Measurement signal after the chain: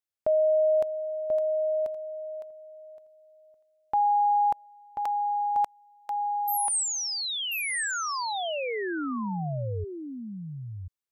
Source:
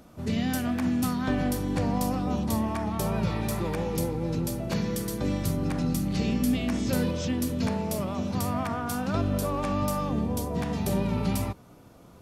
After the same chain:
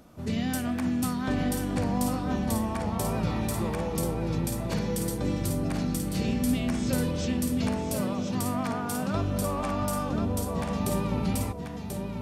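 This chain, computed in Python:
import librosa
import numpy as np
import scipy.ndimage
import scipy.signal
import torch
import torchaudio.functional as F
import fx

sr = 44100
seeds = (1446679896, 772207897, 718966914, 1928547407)

y = x + 10.0 ** (-6.0 / 20.0) * np.pad(x, (int(1037 * sr / 1000.0), 0))[:len(x)]
y = fx.dynamic_eq(y, sr, hz=8500.0, q=3.6, threshold_db=-56.0, ratio=4.0, max_db=6)
y = F.gain(torch.from_numpy(y), -1.5).numpy()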